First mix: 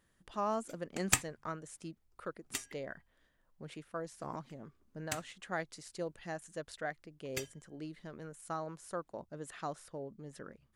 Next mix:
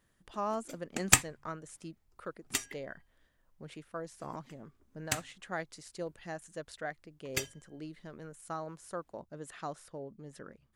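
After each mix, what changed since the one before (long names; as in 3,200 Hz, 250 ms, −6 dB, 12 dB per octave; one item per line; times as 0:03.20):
background +6.5 dB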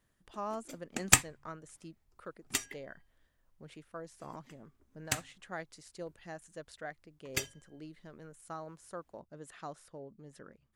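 speech −4.0 dB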